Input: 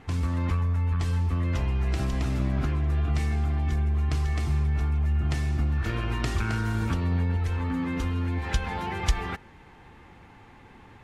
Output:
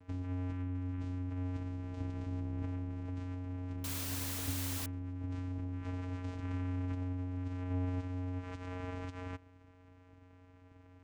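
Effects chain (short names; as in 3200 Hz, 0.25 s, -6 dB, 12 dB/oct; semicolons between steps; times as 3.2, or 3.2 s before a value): limiter -21.5 dBFS, peak gain reduction 10 dB; vocoder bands 4, square 90.8 Hz; 3.84–4.86 requantised 6-bit, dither triangular; gain -5 dB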